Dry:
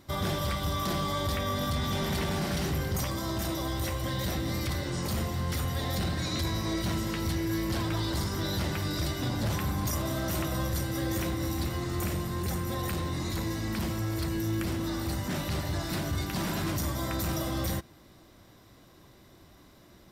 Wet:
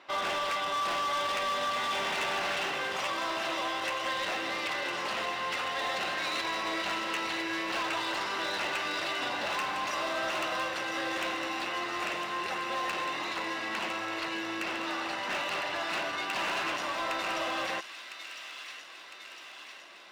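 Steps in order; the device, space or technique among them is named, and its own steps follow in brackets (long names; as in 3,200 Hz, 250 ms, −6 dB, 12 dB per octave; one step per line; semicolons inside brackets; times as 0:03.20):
megaphone (band-pass filter 680–2,600 Hz; parametric band 2,700 Hz +11 dB 0.2 octaves; hard clipping −36.5 dBFS, distortion −11 dB)
low-shelf EQ 220 Hz −6 dB
delay with a high-pass on its return 1,006 ms, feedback 62%, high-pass 2,300 Hz, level −6.5 dB
level +8.5 dB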